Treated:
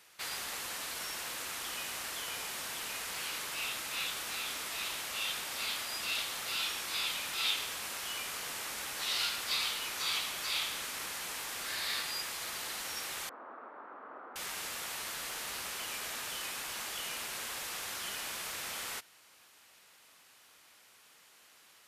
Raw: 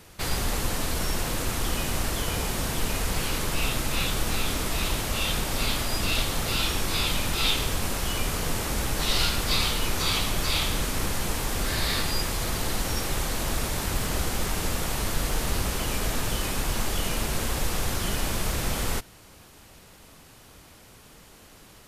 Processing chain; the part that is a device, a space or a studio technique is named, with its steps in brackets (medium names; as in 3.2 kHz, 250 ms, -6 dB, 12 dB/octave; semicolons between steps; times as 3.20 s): 13.29–14.36 s: elliptic band-pass 250–1300 Hz, stop band 70 dB; filter by subtraction (in parallel: low-pass 1.9 kHz 12 dB/octave + polarity flip); on the sum: trim -8 dB